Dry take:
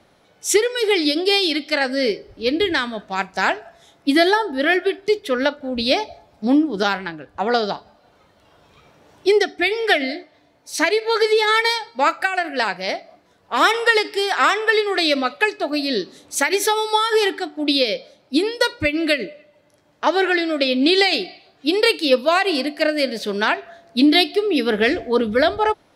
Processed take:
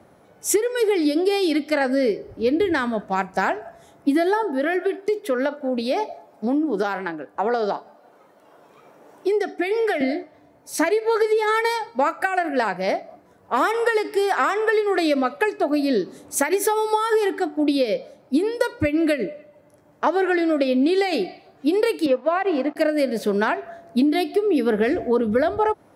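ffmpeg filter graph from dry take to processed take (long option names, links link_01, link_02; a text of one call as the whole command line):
ffmpeg -i in.wav -filter_complex "[0:a]asettb=1/sr,asplit=3[link_01][link_02][link_03];[link_01]atrim=end=4.434[link_04];[link_02]atrim=start=4.43:end=10.01,asetpts=PTS-STARTPTS,afade=type=in:duration=0.004:curve=qsin,afade=type=out:start_time=5.576:duration=0.004:curve=qsin,acompressor=threshold=-20dB:ratio=4:attack=3.2:release=140:knee=1:detection=peak,highpass=280[link_05];[link_03]atrim=start=10.006[link_06];[link_04][link_05]acrossfade=duration=0.004:curve1=hsin:curve2=qsin[link_07];[link_07][link_06]acrossfade=duration=0.004:curve1=qsin:curve2=hsin,asettb=1/sr,asplit=3[link_08][link_09][link_10];[link_08]atrim=end=22.064[link_11];[link_09]atrim=start=22.06:end=22.76,asetpts=PTS-STARTPTS,afade=type=in:duration=0.004:curve=qsin,afade=type=out:start_time=0.696:duration=0.004:curve=qsin,aeval=exprs='sgn(val(0))*max(abs(val(0))-0.02,0)':channel_layout=same,highpass=250,lowpass=2600[link_12];[link_10]atrim=start=22.756[link_13];[link_11][link_12]acrossfade=duration=0.004:curve1=hsin:curve2=qsin[link_14];[link_14][link_13]acrossfade=duration=0.004:curve1=qsin:curve2=hsin,highpass=67,equalizer=frequency=3800:width_type=o:width=1.9:gain=-14.5,acompressor=threshold=-22dB:ratio=6,volume=5.5dB" out.wav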